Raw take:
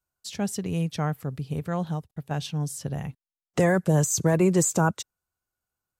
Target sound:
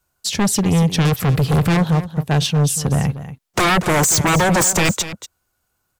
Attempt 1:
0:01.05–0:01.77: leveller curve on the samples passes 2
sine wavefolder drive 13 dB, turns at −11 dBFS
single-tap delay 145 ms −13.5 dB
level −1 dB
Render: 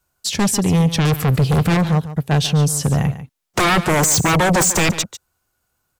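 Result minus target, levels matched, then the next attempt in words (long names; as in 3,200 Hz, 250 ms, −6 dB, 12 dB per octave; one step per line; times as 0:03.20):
echo 92 ms early
0:01.05–0:01.77: leveller curve on the samples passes 2
sine wavefolder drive 13 dB, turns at −11 dBFS
single-tap delay 237 ms −13.5 dB
level −1 dB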